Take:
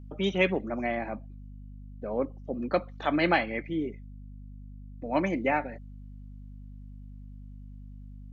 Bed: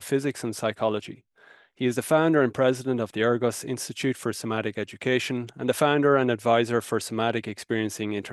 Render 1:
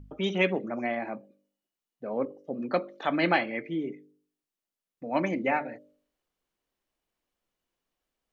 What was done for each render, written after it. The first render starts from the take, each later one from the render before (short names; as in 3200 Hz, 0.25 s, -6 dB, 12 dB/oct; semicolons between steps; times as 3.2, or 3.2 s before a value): de-hum 50 Hz, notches 12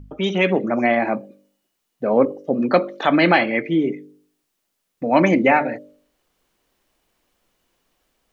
in parallel at +2 dB: limiter -20 dBFS, peak gain reduction 10 dB; on the sum: AGC gain up to 9 dB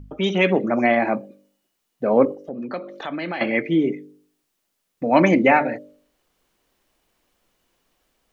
2.34–3.41 compressor 2:1, threshold -36 dBFS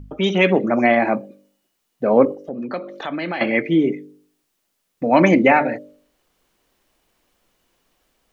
gain +2.5 dB; limiter -2 dBFS, peak gain reduction 2 dB